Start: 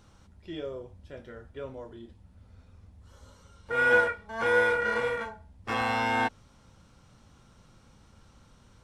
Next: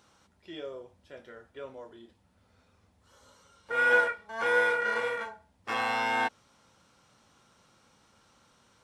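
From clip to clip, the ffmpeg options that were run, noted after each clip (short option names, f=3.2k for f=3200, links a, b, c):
-af "highpass=f=490:p=1"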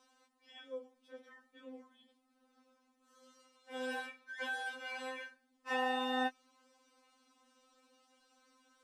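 -af "afftfilt=real='re*3.46*eq(mod(b,12),0)':imag='im*3.46*eq(mod(b,12),0)':win_size=2048:overlap=0.75,volume=-4dB"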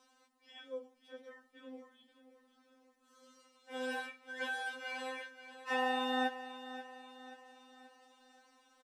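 -af "aecho=1:1:532|1064|1596|2128|2660:0.224|0.11|0.0538|0.0263|0.0129,volume=1dB"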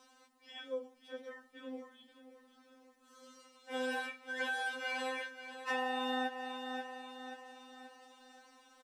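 -af "acompressor=threshold=-38dB:ratio=5,volume=5dB"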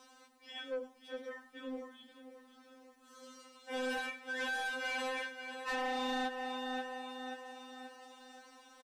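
-af "asoftclip=type=tanh:threshold=-36dB,aecho=1:1:102:0.15,volume=3.5dB"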